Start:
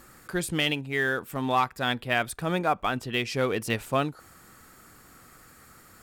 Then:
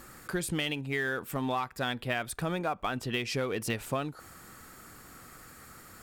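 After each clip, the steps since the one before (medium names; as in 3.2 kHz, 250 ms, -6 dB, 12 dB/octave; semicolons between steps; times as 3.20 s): in parallel at -11.5 dB: saturation -29 dBFS, distortion -6 dB; on the sum: compression 6:1, threshold -28 dBFS, peak gain reduction 10 dB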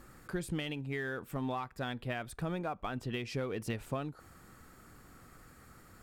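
tilt EQ -1.5 dB/octave; trim -6.5 dB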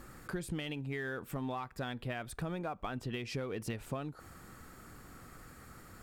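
compression 2:1, threshold -42 dBFS, peak gain reduction 6.5 dB; trim +3.5 dB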